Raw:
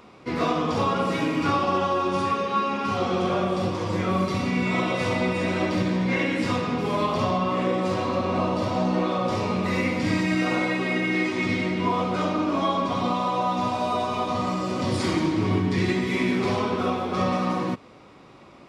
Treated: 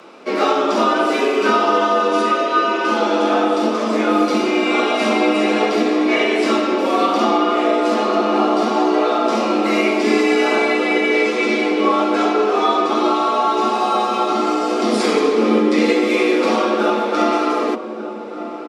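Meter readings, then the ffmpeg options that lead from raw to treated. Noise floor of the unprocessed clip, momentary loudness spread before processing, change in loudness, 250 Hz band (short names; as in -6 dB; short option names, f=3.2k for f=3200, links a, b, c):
-48 dBFS, 2 LU, +8.0 dB, +6.5 dB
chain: -filter_complex "[0:a]asplit=2[a][b];[b]adelay=1190,lowpass=f=840:p=1,volume=-10.5dB,asplit=2[c][d];[d]adelay=1190,lowpass=f=840:p=1,volume=0.46,asplit=2[e][f];[f]adelay=1190,lowpass=f=840:p=1,volume=0.46,asplit=2[g][h];[h]adelay=1190,lowpass=f=840:p=1,volume=0.46,asplit=2[i][j];[j]adelay=1190,lowpass=f=840:p=1,volume=0.46[k];[a][c][e][g][i][k]amix=inputs=6:normalize=0,afreqshift=120,volume=7.5dB"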